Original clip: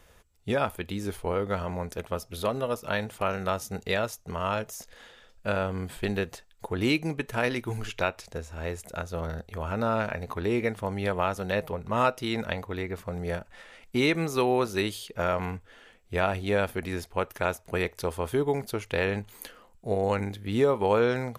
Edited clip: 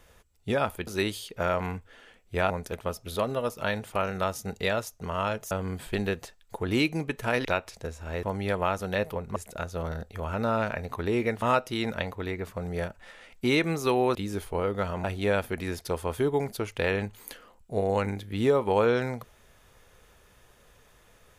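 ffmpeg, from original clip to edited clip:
-filter_complex "[0:a]asplit=11[a][b][c][d][e][f][g][h][i][j][k];[a]atrim=end=0.872[l];[b]atrim=start=14.658:end=16.292[m];[c]atrim=start=1.758:end=4.772[n];[d]atrim=start=5.608:end=7.552[o];[e]atrim=start=7.958:end=8.742[p];[f]atrim=start=10.798:end=11.932[q];[g]atrim=start=8.738:end=10.802[r];[h]atrim=start=11.928:end=14.662[s];[i]atrim=start=0.868:end=1.762[t];[j]atrim=start=16.288:end=17.102[u];[k]atrim=start=17.988[v];[l][m]acrossfade=d=0.004:c1=hsin:c2=hsin[w];[w][n]acrossfade=d=0.004:c1=hsin:c2=hsin[x];[x][o]acrossfade=d=0.004:c1=hsin:c2=hsin[y];[y][p]acrossfade=d=0.004:c1=hsin:c2=hsin[z];[z][q]acrossfade=d=0.004:c1=hsin:c2=hsin[aa];[aa][r]acrossfade=d=0.004:c1=hsin:c2=hsin[ab];[ab][s]acrossfade=d=0.004:c1=hsin:c2=hsin[ac];[ac][t]acrossfade=d=0.004:c1=hsin:c2=hsin[ad];[ad][u]acrossfade=d=0.004:c1=hsin:c2=hsin[ae];[ae][v]acrossfade=d=0.004:c1=hsin:c2=hsin"

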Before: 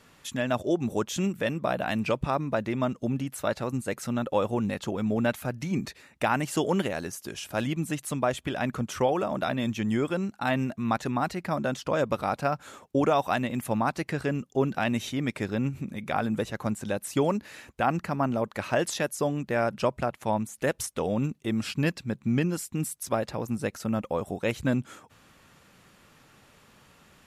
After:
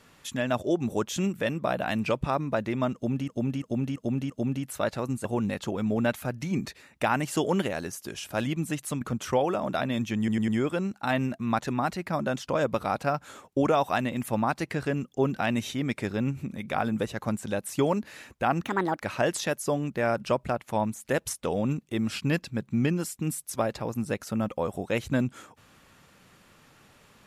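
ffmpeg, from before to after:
-filter_complex "[0:a]asplit=12[a][b][c][d][e][f][g][h][i][j][k][l];[a]atrim=end=3.282[m];[b]atrim=start=2.938:end=3.282[n];[c]atrim=start=2.938:end=3.282[o];[d]atrim=start=2.938:end=3.282[p];[e]atrim=start=2.938:end=3.892[q];[f]atrim=start=4.448:end=8.212[r];[g]atrim=start=8.688:end=9.962[s];[h]atrim=start=9.858:end=9.962[t];[i]atrim=start=9.858:end=9.962[u];[j]atrim=start=9.858:end=18.024[v];[k]atrim=start=18.02:end=18.54,asetpts=PTS-STARTPTS,asetrate=62181,aresample=44100[w];[l]atrim=start=18.536[x];[m][n]acrossfade=d=0.004:c1=hsin:c2=hsin[y];[y][o]acrossfade=d=0.004:c1=hsin:c2=hsin[z];[z][p]acrossfade=d=0.004:c1=hsin:c2=hsin[aa];[aa][q]acrossfade=d=0.004:c1=hsin:c2=hsin[ab];[ab][r]acrossfade=d=0.004:c1=hsin:c2=hsin[ac];[ac][s]acrossfade=d=0.004:c1=hsin:c2=hsin[ad];[ad][t]acrossfade=d=0.004:c1=hsin:c2=hsin[ae];[ae][u]acrossfade=d=0.004:c1=hsin:c2=hsin[af];[af][v]acrossfade=d=0.004:c1=hsin:c2=hsin[ag];[ag][w]acrossfade=d=0.004:c1=hsin:c2=hsin[ah];[ah][x]acrossfade=d=0.004:c1=hsin:c2=hsin"

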